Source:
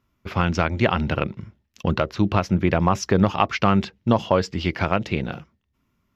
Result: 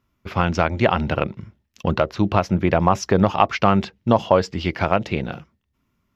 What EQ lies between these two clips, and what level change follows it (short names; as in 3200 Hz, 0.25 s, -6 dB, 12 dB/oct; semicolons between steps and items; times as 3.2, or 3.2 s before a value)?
dynamic EQ 710 Hz, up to +5 dB, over -32 dBFS, Q 1.1; 0.0 dB